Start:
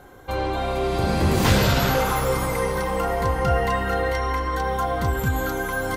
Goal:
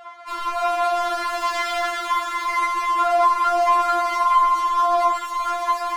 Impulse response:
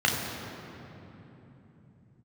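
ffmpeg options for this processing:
-filter_complex "[0:a]highpass=f=780:w=0.5412,highpass=f=780:w=1.3066,asplit=2[a][b];[b]highpass=f=720:p=1,volume=27dB,asoftclip=type=tanh:threshold=-11dB[c];[a][c]amix=inputs=2:normalize=0,lowpass=f=1.7k:p=1,volume=-6dB,adynamicsmooth=sensitivity=8:basefreq=2.5k,flanger=delay=4.5:depth=9.4:regen=-61:speed=1:shape=triangular,afftfilt=real='re*4*eq(mod(b,16),0)':imag='im*4*eq(mod(b,16),0)':win_size=2048:overlap=0.75,volume=2dB"

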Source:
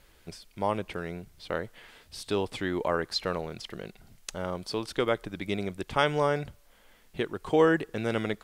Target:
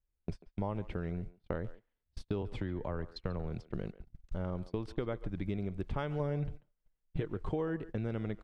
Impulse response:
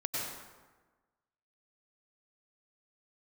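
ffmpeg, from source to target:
-filter_complex "[0:a]aemphasis=mode=reproduction:type=riaa,asettb=1/sr,asplit=3[a][b][c];[a]atrim=end=2.424[d];[b]atrim=start=2.42:end=3.64,asetpts=PTS-STARTPTS,afade=t=in:d=0.004:c=qsin,afade=t=out:st=1.216:d=0.004:c=qsin,acrossover=split=150[e][f];[f]acompressor=threshold=-31dB:ratio=2[g];[e][g]amix=inputs=2:normalize=0[h];[c]atrim=start=3.636[i];[d][h]acrossfade=d=0.004:c1=hsin:c2=qsin[j];[j][i]acrossfade=d=0.004:c1=qsin:c2=hsin,agate=range=-39dB:threshold=-33dB:ratio=16:detection=peak,acompressor=threshold=-33dB:ratio=6,asettb=1/sr,asplit=3[k][l][m];[k]atrim=end=6.194[n];[l]atrim=start=6.19:end=7.28,asetpts=PTS-STARTPTS,afade=t=in:d=0.004:c=qsin,afade=t=out:st=1.086:d=0.004:c=qsin,aecho=1:1:6.5:0.54,atrim=end_sample=48069[o];[m]atrim=start=7.276[p];[n][o]acrossfade=d=0.004:c1=hsin:c2=qsin[q];[q][p]acrossfade=d=0.004:c1=qsin:c2=hsin,asplit=2[r][s];[s]adelay=140,highpass=300,lowpass=3.4k,asoftclip=type=hard:threshold=-28dB,volume=-16dB[t];[r][t]amix=inputs=2:normalize=0"

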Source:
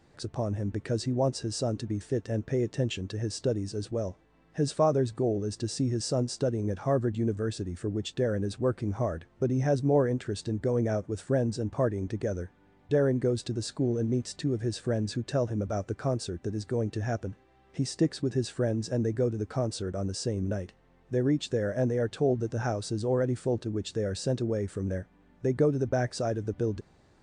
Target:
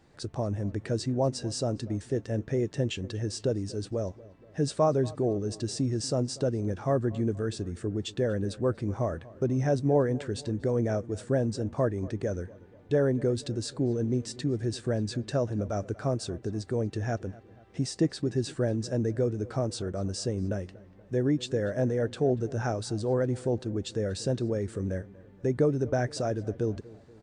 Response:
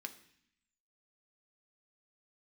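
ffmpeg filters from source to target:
-filter_complex "[0:a]asplit=2[a][b];[b]adelay=239,lowpass=f=2.4k:p=1,volume=-20dB,asplit=2[c][d];[d]adelay=239,lowpass=f=2.4k:p=1,volume=0.53,asplit=2[e][f];[f]adelay=239,lowpass=f=2.4k:p=1,volume=0.53,asplit=2[g][h];[h]adelay=239,lowpass=f=2.4k:p=1,volume=0.53[i];[a][c][e][g][i]amix=inputs=5:normalize=0"

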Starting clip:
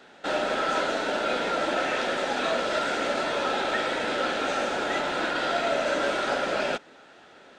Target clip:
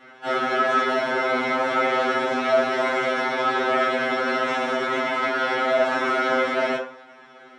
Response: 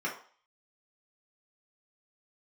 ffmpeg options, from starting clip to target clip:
-filter_complex "[0:a]asplit=4[a][b][c][d];[b]asetrate=22050,aresample=44100,atempo=2,volume=-18dB[e];[c]asetrate=33038,aresample=44100,atempo=1.33484,volume=-9dB[f];[d]asetrate=55563,aresample=44100,atempo=0.793701,volume=-11dB[g];[a][e][f][g]amix=inputs=4:normalize=0[h];[1:a]atrim=start_sample=2205[i];[h][i]afir=irnorm=-1:irlink=0,afftfilt=real='re*2.45*eq(mod(b,6),0)':imag='im*2.45*eq(mod(b,6),0)':win_size=2048:overlap=0.75"

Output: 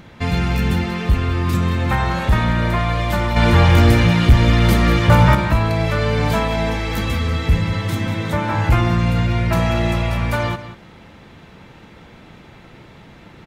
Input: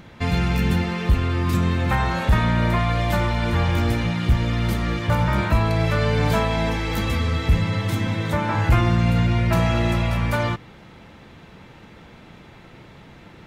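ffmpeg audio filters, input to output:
-filter_complex "[0:a]asettb=1/sr,asplit=3[a][b][c];[a]atrim=end=3.364[d];[b]atrim=start=3.36:end=5.35,asetpts=PTS-STARTPTS,afade=t=in:d=0.004:c=qsin,afade=t=out:st=1.986:d=0.004:c=qsin,acontrast=89[e];[c]atrim=start=5.346[f];[d][e]acrossfade=d=0.004:c1=hsin:c2=qsin[g];[g][f]acrossfade=d=0.004:c1=qsin:c2=hsin,aecho=1:1:187:0.211,volume=2dB"

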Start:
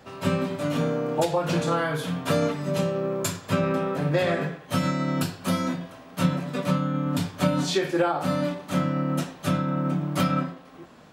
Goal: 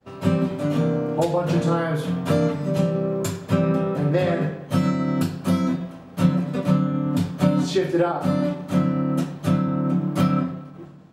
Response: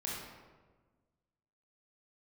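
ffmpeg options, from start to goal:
-filter_complex "[0:a]tiltshelf=f=680:g=4.5,agate=range=-33dB:threshold=-42dB:ratio=3:detection=peak,asplit=2[a][b];[1:a]atrim=start_sample=2205[c];[b][c]afir=irnorm=-1:irlink=0,volume=-13.5dB[d];[a][d]amix=inputs=2:normalize=0"

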